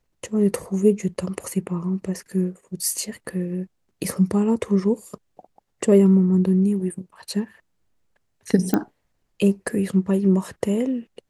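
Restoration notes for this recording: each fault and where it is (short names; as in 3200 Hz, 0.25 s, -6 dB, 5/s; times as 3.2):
8.74 pop -7 dBFS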